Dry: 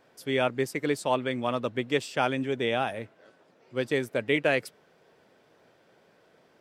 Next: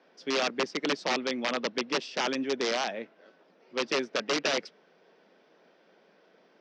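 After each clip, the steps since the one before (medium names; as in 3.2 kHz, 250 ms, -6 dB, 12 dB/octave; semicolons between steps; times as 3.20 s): integer overflow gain 19 dB; Chebyshev band-pass 180–5700 Hz, order 4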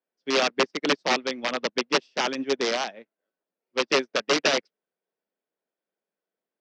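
upward expansion 2.5:1, over -50 dBFS; trim +8 dB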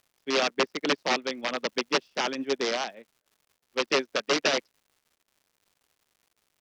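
crackle 240 per s -51 dBFS; trim -2.5 dB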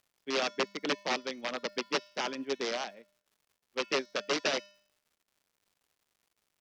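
feedback comb 200 Hz, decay 0.59 s, harmonics odd, mix 50%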